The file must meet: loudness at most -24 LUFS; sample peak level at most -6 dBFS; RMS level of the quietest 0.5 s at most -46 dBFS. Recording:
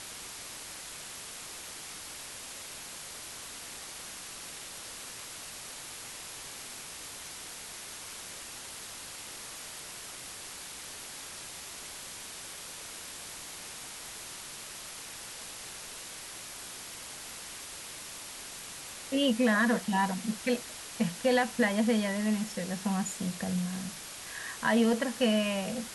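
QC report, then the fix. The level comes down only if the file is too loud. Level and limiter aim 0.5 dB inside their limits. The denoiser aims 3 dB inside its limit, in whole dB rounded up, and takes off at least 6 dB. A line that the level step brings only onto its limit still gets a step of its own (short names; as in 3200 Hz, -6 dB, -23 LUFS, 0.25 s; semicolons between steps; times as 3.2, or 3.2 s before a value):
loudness -34.5 LUFS: OK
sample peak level -15.0 dBFS: OK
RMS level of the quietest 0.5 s -44 dBFS: fail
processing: denoiser 6 dB, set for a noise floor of -44 dBFS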